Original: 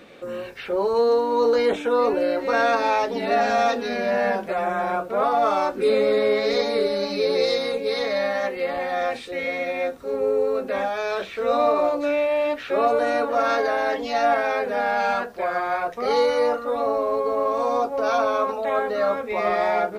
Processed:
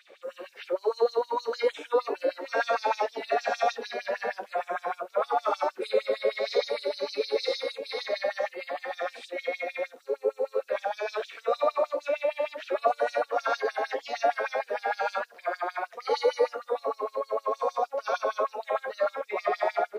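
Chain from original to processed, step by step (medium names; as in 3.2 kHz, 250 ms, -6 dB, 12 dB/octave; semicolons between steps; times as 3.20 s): flange 0.12 Hz, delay 9.5 ms, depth 6.5 ms, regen -57%; LFO high-pass sine 6.5 Hz 390–5600 Hz; trim -4 dB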